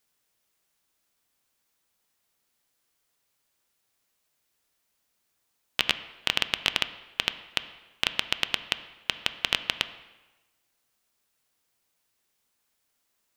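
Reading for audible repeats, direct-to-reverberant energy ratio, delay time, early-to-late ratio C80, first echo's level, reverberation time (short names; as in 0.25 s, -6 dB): none, 11.0 dB, none, 15.0 dB, none, 1.1 s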